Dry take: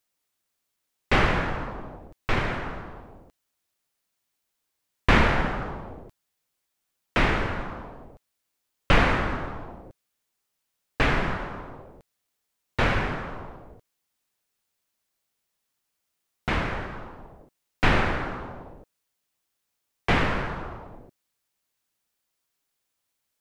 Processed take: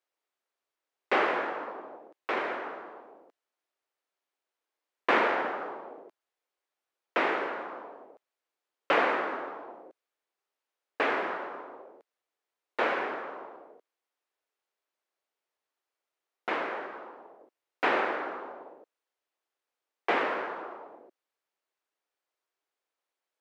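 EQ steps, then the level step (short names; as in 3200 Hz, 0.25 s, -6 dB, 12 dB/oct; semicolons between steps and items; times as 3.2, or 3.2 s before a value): HPF 350 Hz 24 dB/oct; LPF 1400 Hz 6 dB/oct; 0.0 dB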